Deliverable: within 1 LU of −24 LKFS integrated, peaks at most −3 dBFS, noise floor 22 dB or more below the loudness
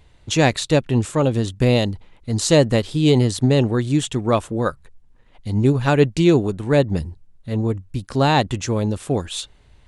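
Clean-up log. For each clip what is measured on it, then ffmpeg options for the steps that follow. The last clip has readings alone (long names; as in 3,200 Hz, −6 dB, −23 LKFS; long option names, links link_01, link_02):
integrated loudness −19.5 LKFS; sample peak −3.0 dBFS; target loudness −24.0 LKFS
→ -af "volume=-4.5dB"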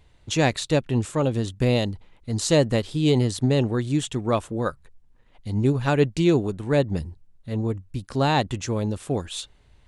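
integrated loudness −24.0 LKFS; sample peak −7.5 dBFS; background noise floor −57 dBFS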